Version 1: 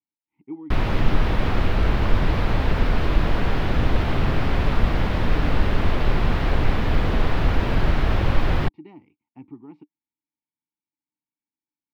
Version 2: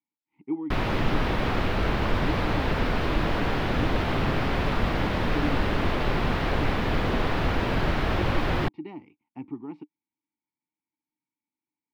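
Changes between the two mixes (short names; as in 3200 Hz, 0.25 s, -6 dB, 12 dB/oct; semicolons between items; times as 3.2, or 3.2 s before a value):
speech +6.0 dB; master: add low shelf 100 Hz -10 dB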